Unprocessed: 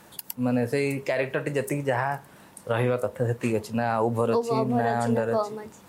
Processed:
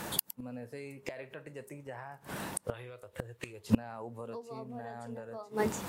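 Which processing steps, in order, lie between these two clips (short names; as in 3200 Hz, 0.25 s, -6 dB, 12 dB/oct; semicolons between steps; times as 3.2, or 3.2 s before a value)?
2.74–3.7 EQ curve 100 Hz 0 dB, 240 Hz -15 dB, 350 Hz -3 dB, 750 Hz -7 dB, 3600 Hz +5 dB, 5200 Hz 0 dB; flipped gate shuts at -24 dBFS, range -30 dB; gain +11 dB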